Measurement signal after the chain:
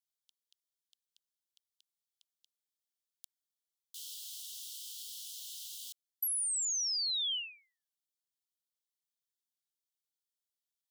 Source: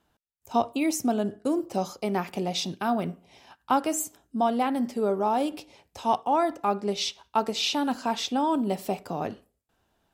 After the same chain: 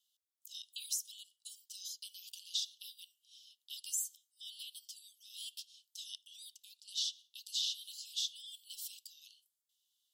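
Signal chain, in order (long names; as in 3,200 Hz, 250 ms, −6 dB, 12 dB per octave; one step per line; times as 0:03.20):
Butterworth high-pass 3,000 Hz 96 dB per octave
downward compressor 6 to 1, threshold −33 dBFS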